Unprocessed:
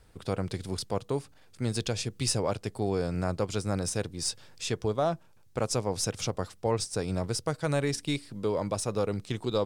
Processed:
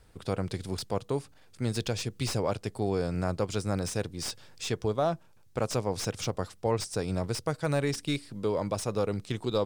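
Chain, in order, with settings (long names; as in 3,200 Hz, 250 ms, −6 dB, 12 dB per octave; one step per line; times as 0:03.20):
slew-rate limiting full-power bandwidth 140 Hz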